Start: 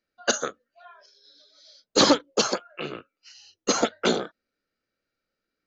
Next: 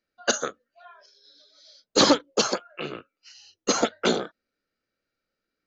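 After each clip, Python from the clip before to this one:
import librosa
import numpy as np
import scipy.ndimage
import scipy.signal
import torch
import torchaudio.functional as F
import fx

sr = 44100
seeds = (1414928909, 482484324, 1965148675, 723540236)

y = x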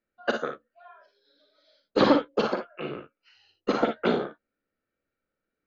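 y = fx.air_absorb(x, sr, metres=420.0)
y = fx.room_early_taps(y, sr, ms=(43, 57, 70), db=(-9.5, -8.0, -17.0))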